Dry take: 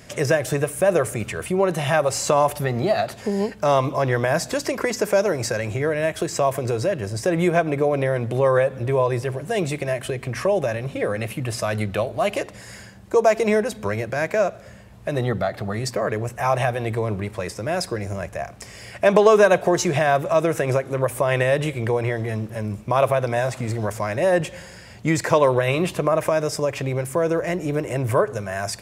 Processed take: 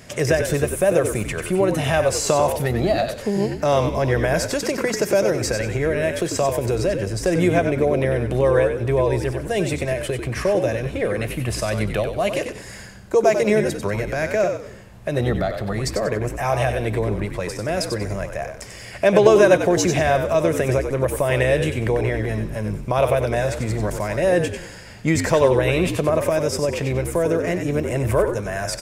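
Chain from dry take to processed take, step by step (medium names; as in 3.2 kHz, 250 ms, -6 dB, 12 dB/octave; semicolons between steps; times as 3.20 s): dynamic bell 1.1 kHz, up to -6 dB, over -33 dBFS, Q 1.4; on a send: frequency-shifting echo 94 ms, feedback 31%, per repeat -61 Hz, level -7 dB; on the sum: trim +1.5 dB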